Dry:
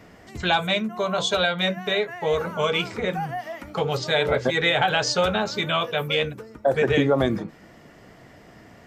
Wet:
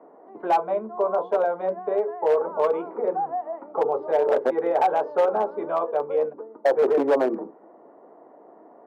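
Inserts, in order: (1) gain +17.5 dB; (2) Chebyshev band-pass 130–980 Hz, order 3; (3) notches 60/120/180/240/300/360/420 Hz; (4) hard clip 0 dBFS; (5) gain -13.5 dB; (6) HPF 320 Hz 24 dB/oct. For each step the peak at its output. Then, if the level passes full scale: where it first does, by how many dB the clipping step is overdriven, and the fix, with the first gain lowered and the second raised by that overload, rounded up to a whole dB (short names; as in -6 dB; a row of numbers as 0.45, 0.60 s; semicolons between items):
+9.5, +7.0, +7.5, 0.0, -13.5, -9.0 dBFS; step 1, 7.5 dB; step 1 +9.5 dB, step 5 -5.5 dB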